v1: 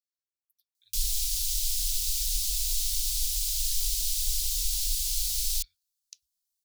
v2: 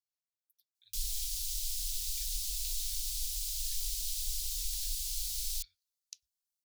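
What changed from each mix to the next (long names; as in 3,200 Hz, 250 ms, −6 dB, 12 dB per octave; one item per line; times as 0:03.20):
background −7.5 dB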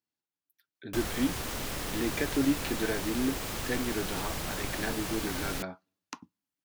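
background −4.0 dB
master: remove inverse Chebyshev band-stop filter 200–890 Hz, stop band 80 dB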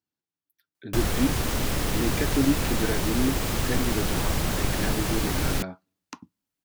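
background +6.0 dB
master: add low-shelf EQ 320 Hz +7 dB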